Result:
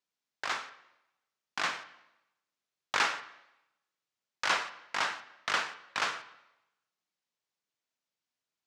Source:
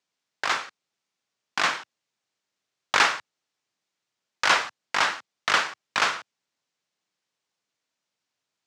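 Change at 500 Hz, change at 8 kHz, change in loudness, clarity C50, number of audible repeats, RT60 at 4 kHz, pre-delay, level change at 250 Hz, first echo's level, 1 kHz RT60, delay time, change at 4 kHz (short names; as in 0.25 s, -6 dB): -8.0 dB, -8.5 dB, -8.5 dB, 13.5 dB, none, 0.85 s, 6 ms, -8.0 dB, none, 0.90 s, none, -8.5 dB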